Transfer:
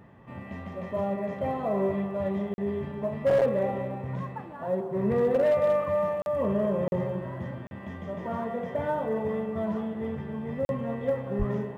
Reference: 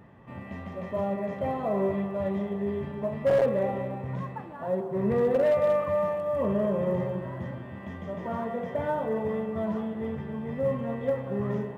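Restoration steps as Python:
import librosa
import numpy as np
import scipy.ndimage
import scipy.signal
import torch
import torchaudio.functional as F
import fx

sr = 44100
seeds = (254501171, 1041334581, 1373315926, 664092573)

y = fx.highpass(x, sr, hz=140.0, slope=24, at=(11.38, 11.5), fade=0.02)
y = fx.fix_interpolate(y, sr, at_s=(2.54, 6.22, 6.88, 7.67, 10.65), length_ms=41.0)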